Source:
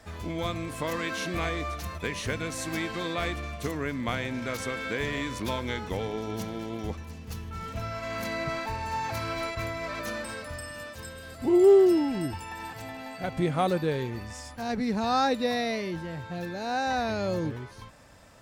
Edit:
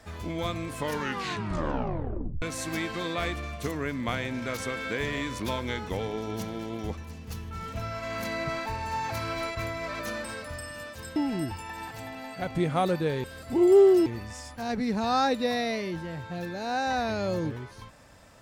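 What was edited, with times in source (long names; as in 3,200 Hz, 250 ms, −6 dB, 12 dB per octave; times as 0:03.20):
0:00.77: tape stop 1.65 s
0:11.16–0:11.98: move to 0:14.06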